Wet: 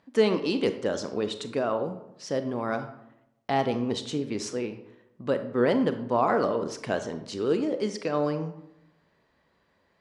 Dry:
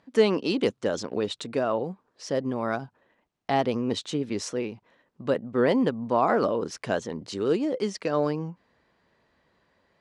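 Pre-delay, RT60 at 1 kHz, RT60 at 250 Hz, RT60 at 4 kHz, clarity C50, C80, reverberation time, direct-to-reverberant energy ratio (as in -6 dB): 28 ms, 0.80 s, 0.95 s, 0.50 s, 10.5 dB, 13.5 dB, 0.85 s, 8.5 dB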